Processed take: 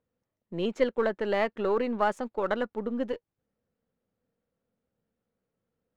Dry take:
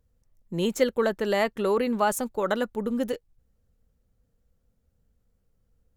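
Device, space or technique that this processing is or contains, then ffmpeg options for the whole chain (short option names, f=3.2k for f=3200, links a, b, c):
crystal radio: -af "highpass=210,lowpass=2.9k,aeval=exprs='if(lt(val(0),0),0.708*val(0),val(0))':c=same,volume=-1dB"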